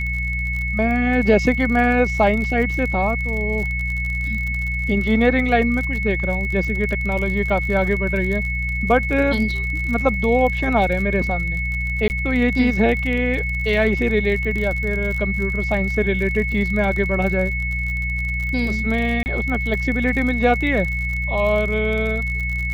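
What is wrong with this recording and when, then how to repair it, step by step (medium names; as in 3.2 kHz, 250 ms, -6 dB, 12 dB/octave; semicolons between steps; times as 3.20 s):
crackle 48 per s -26 dBFS
hum 60 Hz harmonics 3 -25 dBFS
whine 2.2 kHz -24 dBFS
12.08–12.10 s: dropout 19 ms
19.23–19.26 s: dropout 29 ms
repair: de-click; de-hum 60 Hz, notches 3; band-stop 2.2 kHz, Q 30; interpolate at 12.08 s, 19 ms; interpolate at 19.23 s, 29 ms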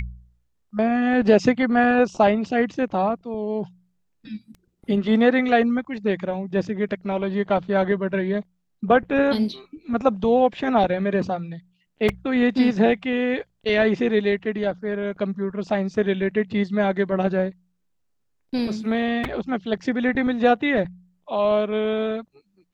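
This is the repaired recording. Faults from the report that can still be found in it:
nothing left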